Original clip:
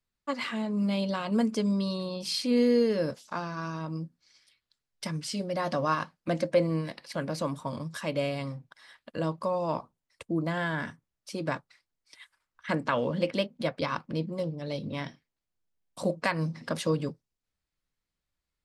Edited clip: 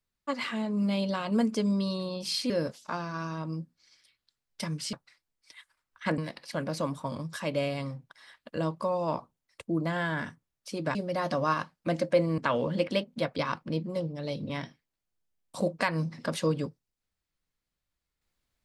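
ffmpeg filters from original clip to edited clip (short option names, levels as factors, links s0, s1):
-filter_complex "[0:a]asplit=6[s0][s1][s2][s3][s4][s5];[s0]atrim=end=2.502[s6];[s1]atrim=start=2.928:end=5.362[s7];[s2]atrim=start=11.558:end=12.812[s8];[s3]atrim=start=6.788:end=11.562[s9];[s4]atrim=start=5.358:end=6.792[s10];[s5]atrim=start=12.808[s11];[s6][s7]acrossfade=d=0.004:c1=hsin:c2=hsin[s12];[s12][s8]acrossfade=d=0.004:c1=hsin:c2=hsin[s13];[s13][s9]acrossfade=d=0.004:c1=hsin:c2=hsin[s14];[s14][s10]acrossfade=d=0.004:c1=hsin:c2=hsin[s15];[s15][s11]acrossfade=d=0.004:c1=hsin:c2=hsin"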